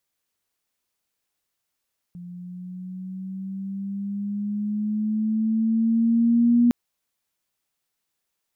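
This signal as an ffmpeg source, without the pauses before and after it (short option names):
-f lavfi -i "aevalsrc='pow(10,(-13.5+22*(t/4.56-1))/20)*sin(2*PI*175*4.56/(5.5*log(2)/12)*(exp(5.5*log(2)/12*t/4.56)-1))':d=4.56:s=44100"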